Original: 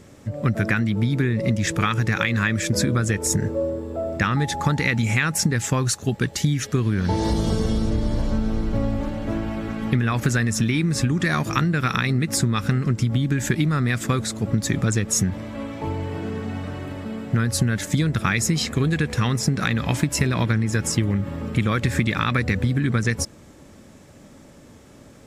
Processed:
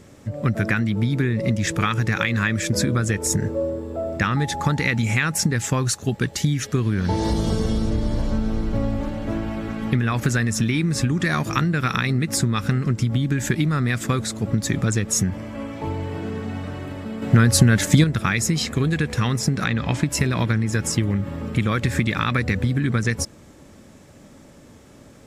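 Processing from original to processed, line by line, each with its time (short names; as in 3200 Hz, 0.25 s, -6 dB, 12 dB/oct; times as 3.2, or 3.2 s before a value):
15.23–15.76 notch 3800 Hz, Q 5.8
17.22–18.04 gain +6.5 dB
19.64–20.06 air absorption 55 m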